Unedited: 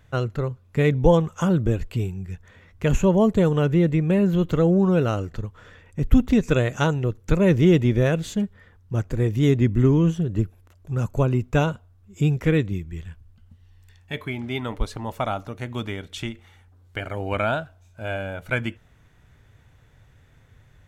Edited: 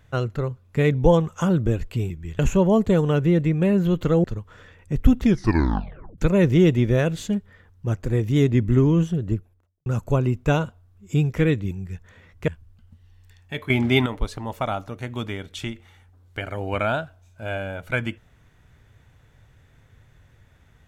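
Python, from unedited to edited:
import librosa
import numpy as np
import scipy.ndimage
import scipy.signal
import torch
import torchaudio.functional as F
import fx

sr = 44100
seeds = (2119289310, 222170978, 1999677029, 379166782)

y = fx.studio_fade_out(x, sr, start_s=10.21, length_s=0.72)
y = fx.edit(y, sr, fx.swap(start_s=2.1, length_s=0.77, other_s=12.78, other_length_s=0.29),
    fx.cut(start_s=4.72, length_s=0.59),
    fx.tape_stop(start_s=6.28, length_s=0.97),
    fx.clip_gain(start_s=14.29, length_s=0.36, db=10.0), tone=tone)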